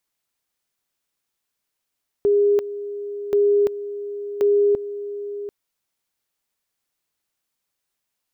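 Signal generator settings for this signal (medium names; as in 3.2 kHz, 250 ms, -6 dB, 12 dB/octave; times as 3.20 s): two-level tone 408 Hz -13.5 dBFS, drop 13.5 dB, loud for 0.34 s, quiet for 0.74 s, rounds 3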